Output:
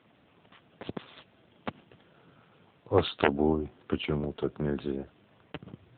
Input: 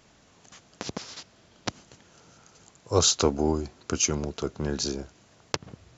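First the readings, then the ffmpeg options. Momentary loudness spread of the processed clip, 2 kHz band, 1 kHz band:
20 LU, +1.5 dB, −1.0 dB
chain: -af "aeval=exprs='(mod(2.99*val(0)+1,2)-1)/2.99':channel_layout=same" -ar 8000 -c:a libopencore_amrnb -b:a 7400

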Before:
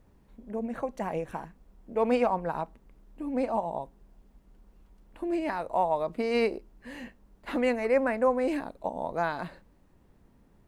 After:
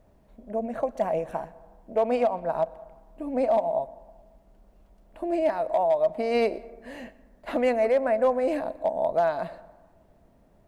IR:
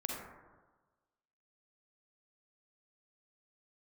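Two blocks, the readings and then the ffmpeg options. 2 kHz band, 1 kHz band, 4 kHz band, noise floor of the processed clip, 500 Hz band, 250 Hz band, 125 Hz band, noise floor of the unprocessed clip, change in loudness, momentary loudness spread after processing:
−1.5 dB, +2.0 dB, 0.0 dB, −60 dBFS, +5.0 dB, −0.5 dB, −2.0 dB, −62 dBFS, +3.5 dB, 16 LU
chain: -filter_complex "[0:a]equalizer=frequency=640:width=3.7:gain=14.5,alimiter=limit=-14dB:level=0:latency=1:release=402,asoftclip=type=hard:threshold=-15.5dB,asplit=2[link_01][link_02];[1:a]atrim=start_sample=2205,adelay=123[link_03];[link_02][link_03]afir=irnorm=-1:irlink=0,volume=-21.5dB[link_04];[link_01][link_04]amix=inputs=2:normalize=0"

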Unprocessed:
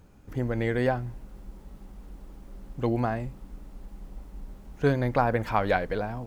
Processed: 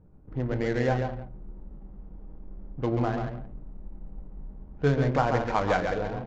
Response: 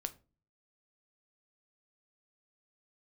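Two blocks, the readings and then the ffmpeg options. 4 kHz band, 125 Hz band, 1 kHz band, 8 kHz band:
+1.5 dB, +1.0 dB, 0.0 dB, can't be measured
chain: -filter_complex "[0:a]aecho=1:1:136|210|307:0.531|0.15|0.112[link_01];[1:a]atrim=start_sample=2205[link_02];[link_01][link_02]afir=irnorm=-1:irlink=0,adynamicsmooth=sensitivity=7:basefreq=680,aresample=16000,aresample=44100"

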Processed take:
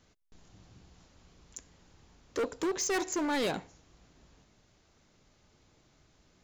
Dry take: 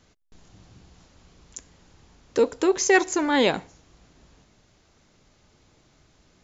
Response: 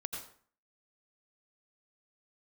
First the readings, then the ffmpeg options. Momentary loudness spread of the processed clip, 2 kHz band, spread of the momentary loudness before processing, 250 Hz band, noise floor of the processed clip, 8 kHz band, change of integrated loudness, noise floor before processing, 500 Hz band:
19 LU, −12.5 dB, 8 LU, −9.0 dB, −67 dBFS, can't be measured, −10.5 dB, −62 dBFS, −11.5 dB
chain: -af "asoftclip=type=hard:threshold=-22dB,volume=-5.5dB"

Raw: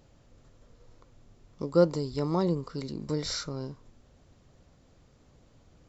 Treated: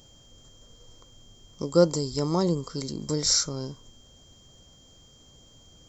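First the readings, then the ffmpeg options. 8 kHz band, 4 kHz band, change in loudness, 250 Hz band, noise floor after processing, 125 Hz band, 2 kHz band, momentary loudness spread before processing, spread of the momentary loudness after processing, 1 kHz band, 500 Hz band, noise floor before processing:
can't be measured, +9.5 dB, +4.5 dB, +2.5 dB, −55 dBFS, +2.5 dB, +1.0 dB, 14 LU, 14 LU, +2.0 dB, +2.5 dB, −61 dBFS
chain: -af "highshelf=frequency=4600:width_type=q:width=1.5:gain=11.5,aeval=exprs='val(0)+0.00112*sin(2*PI*3200*n/s)':channel_layout=same,volume=2.5dB"

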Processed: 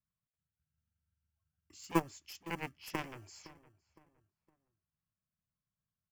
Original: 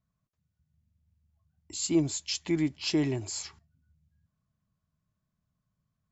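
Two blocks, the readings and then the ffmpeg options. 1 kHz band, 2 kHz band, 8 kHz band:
+9.0 dB, −2.5 dB, can't be measured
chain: -filter_complex "[0:a]lowpass=frequency=5400:width=0.5412,lowpass=frequency=5400:width=1.3066,aeval=exprs='0.188*(cos(1*acos(clip(val(0)/0.188,-1,1)))-cos(1*PI/2))+0.075*(cos(3*acos(clip(val(0)/0.188,-1,1)))-cos(3*PI/2))':channel_layout=same,asplit=2[link_01][link_02];[link_02]acrusher=bits=4:mode=log:mix=0:aa=0.000001,volume=-10.5dB[link_03];[link_01][link_03]amix=inputs=2:normalize=0,asplit=2[link_04][link_05];[link_05]adelay=512,lowpass=frequency=1500:poles=1,volume=-17dB,asplit=2[link_06][link_07];[link_07]adelay=512,lowpass=frequency=1500:poles=1,volume=0.36,asplit=2[link_08][link_09];[link_09]adelay=512,lowpass=frequency=1500:poles=1,volume=0.36[link_10];[link_04][link_06][link_08][link_10]amix=inputs=4:normalize=0,acrossover=split=380|1700[link_11][link_12][link_13];[link_11]acrusher=samples=30:mix=1:aa=0.000001[link_14];[link_13]acontrast=77[link_15];[link_14][link_12][link_15]amix=inputs=3:normalize=0,equalizer=frequency=3900:width=2.5:gain=-15,volume=-2.5dB"

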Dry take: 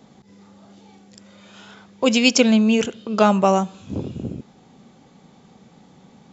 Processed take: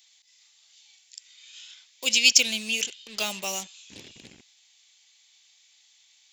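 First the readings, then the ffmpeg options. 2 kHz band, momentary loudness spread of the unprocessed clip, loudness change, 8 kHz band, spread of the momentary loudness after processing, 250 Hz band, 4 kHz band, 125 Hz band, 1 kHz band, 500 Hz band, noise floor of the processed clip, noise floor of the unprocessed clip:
−1.0 dB, 16 LU, −4.0 dB, can't be measured, 15 LU, −23.5 dB, +2.0 dB, below −20 dB, −19.0 dB, −20.0 dB, −61 dBFS, −52 dBFS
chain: -filter_complex "[0:a]lowshelf=frequency=230:gain=-11,acrossover=split=970[link_01][link_02];[link_01]acrusher=bits=5:mix=0:aa=0.5[link_03];[link_03][link_02]amix=inputs=2:normalize=0,aexciter=amount=9.6:drive=5.9:freq=2000,volume=-18dB"

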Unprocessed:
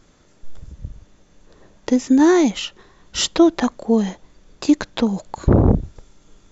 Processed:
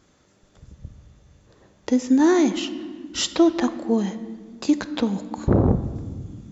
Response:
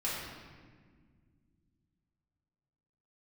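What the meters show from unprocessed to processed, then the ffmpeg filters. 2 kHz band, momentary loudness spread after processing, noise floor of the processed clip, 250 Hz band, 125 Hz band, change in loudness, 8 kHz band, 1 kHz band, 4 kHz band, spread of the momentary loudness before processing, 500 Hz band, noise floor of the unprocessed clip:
−3.5 dB, 17 LU, −60 dBFS, −3.0 dB, −4.0 dB, −4.0 dB, can't be measured, −3.5 dB, −3.5 dB, 15 LU, −3.5 dB, −54 dBFS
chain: -filter_complex "[0:a]highpass=57,asplit=2[link_01][link_02];[1:a]atrim=start_sample=2205[link_03];[link_02][link_03]afir=irnorm=-1:irlink=0,volume=-14.5dB[link_04];[link_01][link_04]amix=inputs=2:normalize=0,volume=-5dB"

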